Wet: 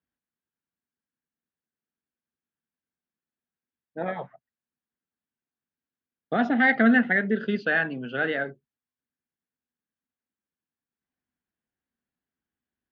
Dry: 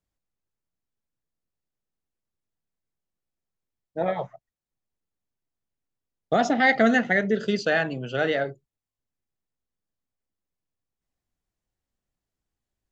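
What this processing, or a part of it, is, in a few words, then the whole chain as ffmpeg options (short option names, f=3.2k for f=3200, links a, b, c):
guitar cabinet: -af "highpass=94,equalizer=f=110:t=q:w=4:g=-8,equalizer=f=240:t=q:w=4:g=8,equalizer=f=610:t=q:w=4:g=-4,equalizer=f=1.6k:t=q:w=4:g=8,lowpass=f=3.5k:w=0.5412,lowpass=f=3.5k:w=1.3066,volume=-3.5dB"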